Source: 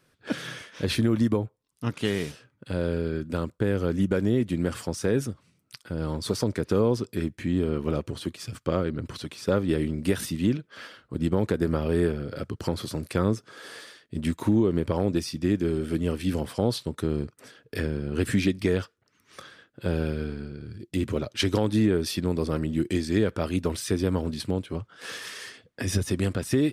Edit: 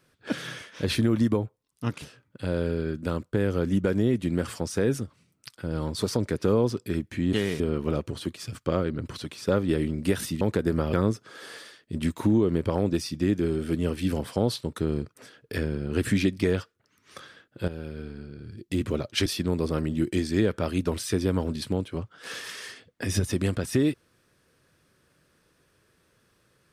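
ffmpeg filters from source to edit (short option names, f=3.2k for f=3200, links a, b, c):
-filter_complex "[0:a]asplit=8[a][b][c][d][e][f][g][h];[a]atrim=end=2.022[i];[b]atrim=start=2.288:end=7.602[j];[c]atrim=start=2.018:end=2.292[k];[d]atrim=start=7.598:end=10.412[l];[e]atrim=start=11.358:end=11.882[m];[f]atrim=start=13.148:end=19.9,asetpts=PTS-STARTPTS,afade=t=out:st=6.748:d=0.004:c=hsin:silence=0.237137[n];[g]atrim=start=19.9:end=21.482,asetpts=PTS-STARTPTS,afade=t=in:d=1.08:silence=0.237137[o];[h]atrim=start=22.038[p];[i][j]acrossfade=d=0.004:c1=hsin:c2=hsin[q];[q][k]acrossfade=d=0.004:c1=hsin:c2=hsin[r];[r][l]acrossfade=d=0.004:c1=hsin:c2=hsin[s];[s][m]acrossfade=d=0.004:c1=hsin:c2=hsin[t];[n][o]concat=n=2:v=0:a=1[u];[t][u]acrossfade=d=0.004:c1=hsin:c2=hsin[v];[v][p]acrossfade=d=0.004:c1=hsin:c2=hsin"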